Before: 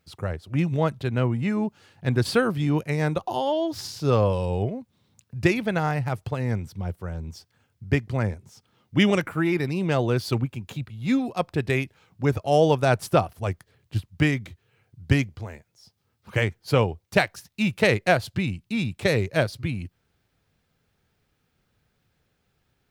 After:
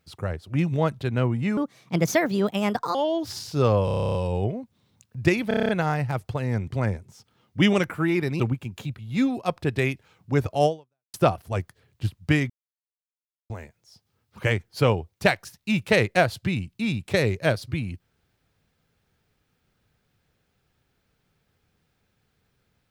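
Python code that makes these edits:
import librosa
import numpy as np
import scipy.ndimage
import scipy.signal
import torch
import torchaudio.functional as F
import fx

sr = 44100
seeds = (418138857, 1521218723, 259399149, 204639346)

y = fx.edit(x, sr, fx.speed_span(start_s=1.57, length_s=1.86, speed=1.35),
    fx.stutter(start_s=4.33, slice_s=0.03, count=11),
    fx.stutter(start_s=5.66, slice_s=0.03, count=8),
    fx.cut(start_s=6.65, length_s=1.4),
    fx.cut(start_s=9.77, length_s=0.54),
    fx.fade_out_span(start_s=12.57, length_s=0.48, curve='exp'),
    fx.silence(start_s=14.41, length_s=1.0), tone=tone)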